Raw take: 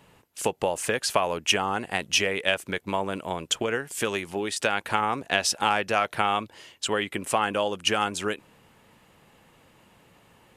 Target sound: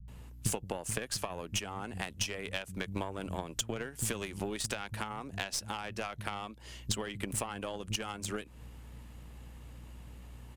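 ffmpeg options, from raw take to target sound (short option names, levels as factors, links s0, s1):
-filter_complex "[0:a]aeval=exprs='val(0)+0.00178*(sin(2*PI*60*n/s)+sin(2*PI*2*60*n/s)/2+sin(2*PI*3*60*n/s)/3+sin(2*PI*4*60*n/s)/4+sin(2*PI*5*60*n/s)/5)':c=same,acrossover=split=170[s0][s1];[s1]adelay=80[s2];[s0][s2]amix=inputs=2:normalize=0,acompressor=threshold=0.0178:ratio=6,bass=f=250:g=12,treble=f=4000:g=5,aeval=exprs='0.141*(cos(1*acos(clip(val(0)/0.141,-1,1)))-cos(1*PI/2))+0.0224*(cos(2*acos(clip(val(0)/0.141,-1,1)))-cos(2*PI/2))+0.00282*(cos(6*acos(clip(val(0)/0.141,-1,1)))-cos(6*PI/2))+0.00708*(cos(7*acos(clip(val(0)/0.141,-1,1)))-cos(7*PI/2))':c=same"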